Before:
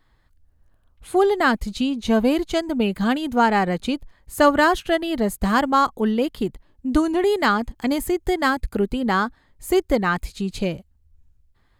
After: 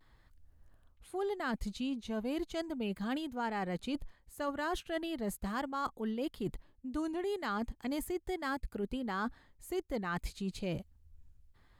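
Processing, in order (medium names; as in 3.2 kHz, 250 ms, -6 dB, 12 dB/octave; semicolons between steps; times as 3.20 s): reverse; compression 6:1, threshold -32 dBFS, peak gain reduction 20 dB; reverse; vibrato 0.38 Hz 23 cents; trim -2.5 dB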